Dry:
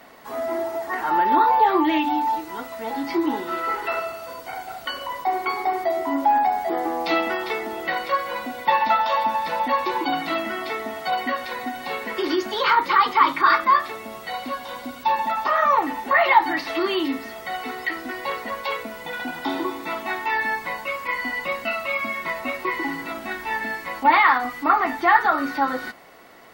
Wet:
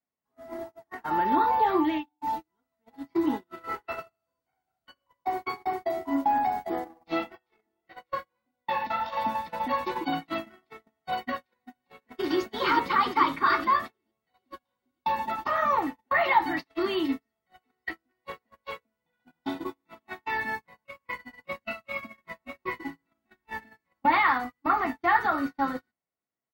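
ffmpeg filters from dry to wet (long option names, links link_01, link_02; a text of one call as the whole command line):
ffmpeg -i in.wav -filter_complex "[0:a]asettb=1/sr,asplit=3[link_01][link_02][link_03];[link_01]atrim=end=6.844[link_04];[link_02]atrim=start=6.84:end=9.17,asetpts=PTS-STARTPTS,afade=type=in:duration=0.004:curve=qsin,afade=type=out:start_time=2.326:duration=0.004:curve=qsin,flanger=delay=20:depth=4.5:speed=1.7[link_05];[link_03]atrim=start=9.166[link_06];[link_04][link_05]acrossfade=duration=0.004:curve1=hsin:curve2=qsin[link_07];[link_07][link_06]acrossfade=duration=0.004:curve1=qsin:curve2=hsin,asplit=2[link_08][link_09];[link_09]afade=type=in:start_time=11.64:duration=0.01,afade=type=out:start_time=12.35:duration=0.01,aecho=0:1:440|880|1320|1760|2200|2640|3080|3520|3960|4400|4840|5280:0.668344|0.467841|0.327489|0.229242|0.160469|0.112329|0.07863|0.055041|0.0385287|0.0269701|0.0188791|0.0132153[link_10];[link_08][link_10]amix=inputs=2:normalize=0,asplit=2[link_11][link_12];[link_11]atrim=end=2.21,asetpts=PTS-STARTPTS,afade=type=out:start_time=1.77:duration=0.44:silence=0.133352[link_13];[link_12]atrim=start=2.21,asetpts=PTS-STARTPTS,afade=type=in:duration=0.004:curve=hsin:silence=0.133352[link_14];[link_13][link_14]concat=n=2:v=0:a=1,highpass=49,agate=range=-42dB:threshold=-24dB:ratio=16:detection=peak,bass=frequency=250:gain=12,treble=frequency=4000:gain=0,volume=-6.5dB" out.wav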